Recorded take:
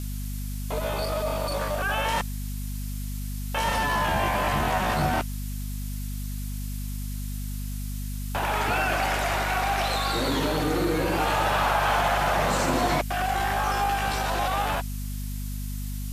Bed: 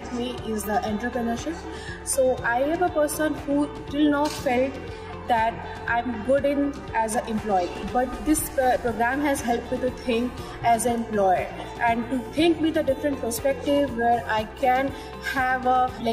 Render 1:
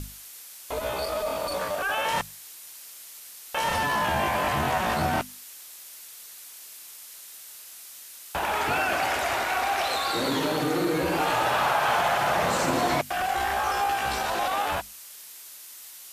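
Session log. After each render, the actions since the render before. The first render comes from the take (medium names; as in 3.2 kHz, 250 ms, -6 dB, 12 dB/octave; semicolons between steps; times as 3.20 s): hum notches 50/100/150/200/250 Hz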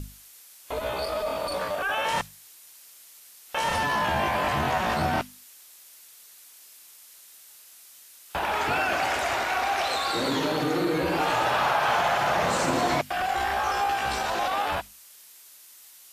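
noise print and reduce 6 dB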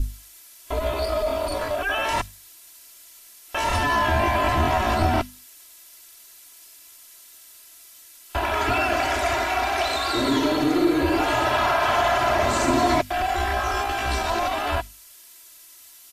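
bass shelf 160 Hz +11.5 dB; comb 3 ms, depth 89%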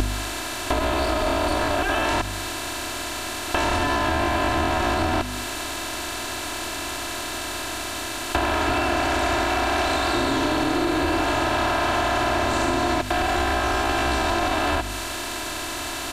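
spectral levelling over time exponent 0.4; compression, threshold -19 dBFS, peak gain reduction 8.5 dB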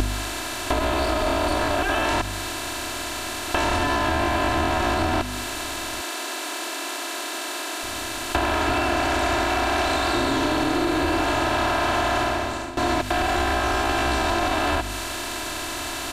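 6.01–7.83 s: steep high-pass 270 Hz; 12.19–12.77 s: fade out, to -15.5 dB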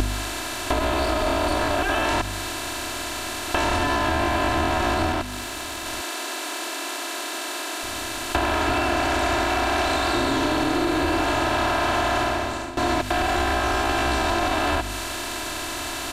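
5.12–5.86 s: valve stage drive 17 dB, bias 0.5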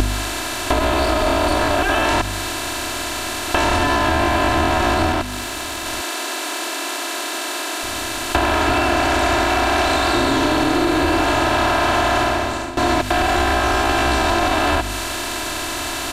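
trim +5 dB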